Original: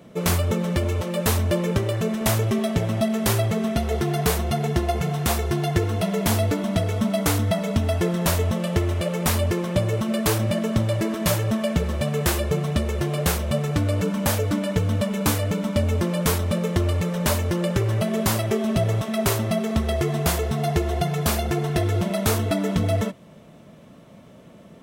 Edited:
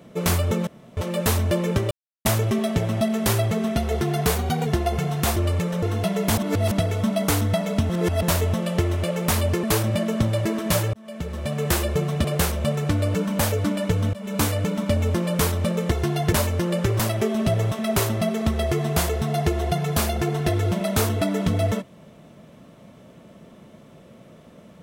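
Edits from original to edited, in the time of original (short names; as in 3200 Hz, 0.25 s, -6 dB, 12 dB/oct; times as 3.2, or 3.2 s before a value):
0.67–0.97 room tone
1.91–2.25 mute
4.35–4.69 speed 108%
5.39–5.8 swap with 16.78–17.24
6.35–6.69 reverse
7.87–8.2 reverse
9.61–10.19 cut
11.49–12.26 fade in
12.8–13.11 cut
15–15.38 fade in equal-power, from -23.5 dB
17.91–18.29 cut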